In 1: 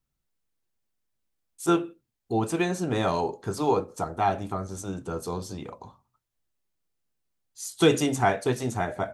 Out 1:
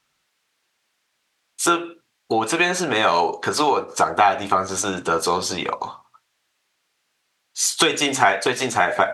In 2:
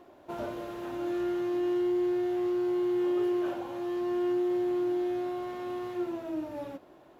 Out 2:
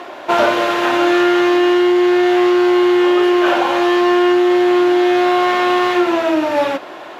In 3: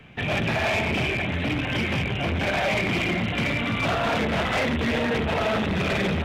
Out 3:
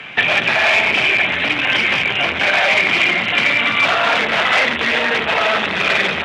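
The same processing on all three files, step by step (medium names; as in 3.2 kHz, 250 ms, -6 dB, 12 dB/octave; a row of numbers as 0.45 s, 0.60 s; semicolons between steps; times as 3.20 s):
compression 16:1, threshold -29 dBFS; band-pass filter 2.3 kHz, Q 0.62; peak normalisation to -2 dBFS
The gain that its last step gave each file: +23.0 dB, +31.0 dB, +21.0 dB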